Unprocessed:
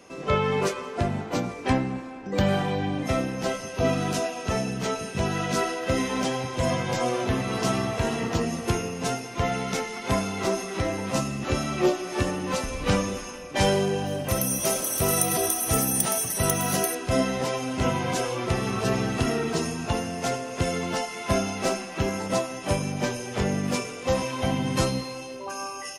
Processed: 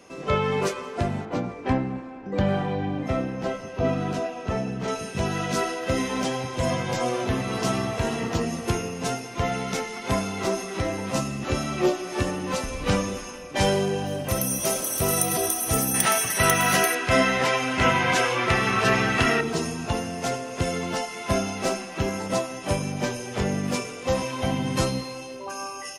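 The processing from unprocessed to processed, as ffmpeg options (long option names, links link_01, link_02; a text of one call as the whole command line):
ffmpeg -i in.wav -filter_complex "[0:a]asettb=1/sr,asplit=3[link_01][link_02][link_03];[link_01]atrim=end=1.254[link_04];[link_02]atrim=start=1.25:end=4.88,asetpts=PTS-STARTPTS,afade=type=in:duration=0.004:curve=qsin,afade=type=out:start_time=3.626:duration=0.004:curve=qsin,lowpass=frequency=1800:poles=1[link_05];[link_03]atrim=start=4.876[link_06];[link_04][link_05]acrossfade=duration=0.004:curve1=hsin:curve2=qsin[link_07];[link_07][link_06]acrossfade=duration=0.004:curve1=qsin:curve2=hsin,asettb=1/sr,asplit=3[link_08][link_09][link_10];[link_08]atrim=end=15.944[link_11];[link_09]atrim=start=15.94:end=19.41,asetpts=PTS-STARTPTS,afade=type=in:duration=0.004:curve=qsin,afade=type=out:start_time=3.466:duration=0.004:curve=qsin,equalizer=frequency=1900:width_type=o:width=2:gain=12.5[link_12];[link_10]atrim=start=19.406[link_13];[link_11][link_12]acrossfade=duration=0.004:curve1=hsin:curve2=qsin[link_14];[link_14][link_13]acrossfade=duration=0.004:curve1=qsin:curve2=hsin" out.wav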